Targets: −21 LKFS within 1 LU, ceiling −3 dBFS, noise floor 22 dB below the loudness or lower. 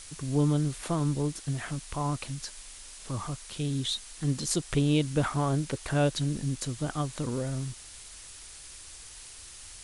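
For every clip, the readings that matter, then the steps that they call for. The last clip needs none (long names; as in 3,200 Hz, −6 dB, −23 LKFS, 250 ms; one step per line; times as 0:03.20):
background noise floor −47 dBFS; target noise floor −53 dBFS; integrated loudness −30.5 LKFS; sample peak −13.0 dBFS; target loudness −21.0 LKFS
→ noise reduction from a noise print 6 dB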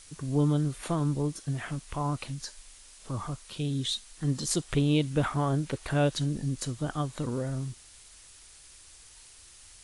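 background noise floor −53 dBFS; integrated loudness −30.5 LKFS; sample peak −14.0 dBFS; target loudness −21.0 LKFS
→ level +9.5 dB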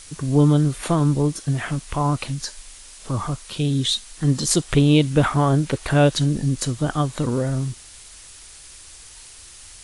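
integrated loudness −21.0 LKFS; sample peak −4.5 dBFS; background noise floor −44 dBFS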